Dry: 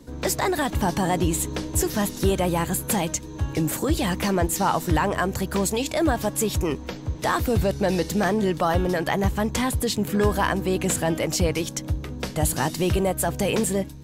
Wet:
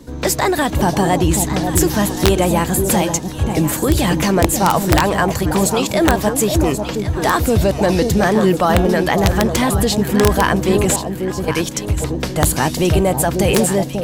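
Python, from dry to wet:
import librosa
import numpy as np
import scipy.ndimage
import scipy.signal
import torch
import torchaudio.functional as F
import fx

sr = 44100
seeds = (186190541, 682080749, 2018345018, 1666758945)

y = fx.tone_stack(x, sr, knobs='6-0-2', at=(10.96, 11.48))
y = fx.echo_alternate(y, sr, ms=541, hz=830.0, feedback_pct=54, wet_db=-5.0)
y = (np.mod(10.0 ** (10.0 / 20.0) * y + 1.0, 2.0) - 1.0) / 10.0 ** (10.0 / 20.0)
y = y * 10.0 ** (7.0 / 20.0)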